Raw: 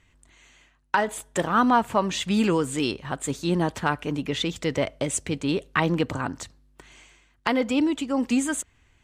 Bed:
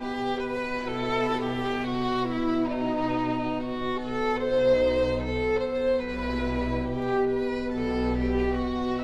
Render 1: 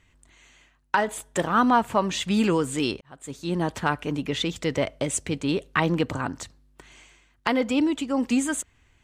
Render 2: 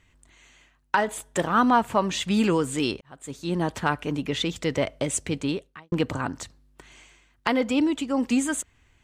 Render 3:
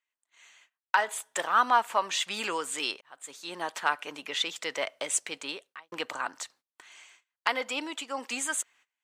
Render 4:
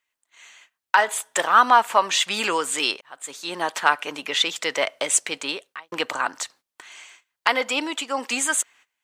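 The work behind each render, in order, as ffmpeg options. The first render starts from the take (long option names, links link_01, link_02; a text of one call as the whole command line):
ffmpeg -i in.wav -filter_complex "[0:a]asplit=2[link_01][link_02];[link_01]atrim=end=3.01,asetpts=PTS-STARTPTS,afade=type=out:start_time=3.006:duration=0.004:curve=hsin[link_03];[link_02]atrim=start=3.01,asetpts=PTS-STARTPTS,afade=type=in:duration=0.75[link_04];[link_03][link_04]concat=n=2:v=0:a=1" out.wav
ffmpeg -i in.wav -filter_complex "[0:a]asplit=2[link_01][link_02];[link_01]atrim=end=5.92,asetpts=PTS-STARTPTS,afade=type=out:start_time=5.45:duration=0.47:curve=qua[link_03];[link_02]atrim=start=5.92,asetpts=PTS-STARTPTS,afade=type=in:duration=0.004:curve=hsin[link_04];[link_03][link_04]concat=n=2:v=0:a=1" out.wav
ffmpeg -i in.wav -af "highpass=830,agate=range=-22dB:threshold=-57dB:ratio=16:detection=peak" out.wav
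ffmpeg -i in.wav -af "volume=8.5dB,alimiter=limit=-3dB:level=0:latency=1" out.wav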